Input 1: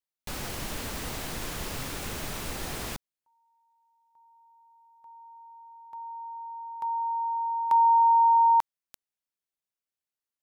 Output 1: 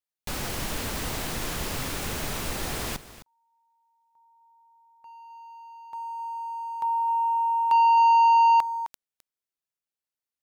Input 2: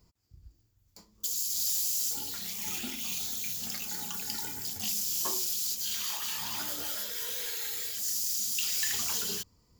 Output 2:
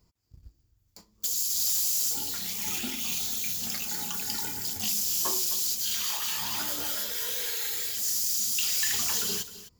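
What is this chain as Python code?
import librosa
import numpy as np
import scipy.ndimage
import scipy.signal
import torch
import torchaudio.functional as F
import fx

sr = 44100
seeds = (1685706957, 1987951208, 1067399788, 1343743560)

y = x + 10.0 ** (-14.5 / 20.0) * np.pad(x, (int(260 * sr / 1000.0), 0))[:len(x)]
y = fx.leveller(y, sr, passes=1)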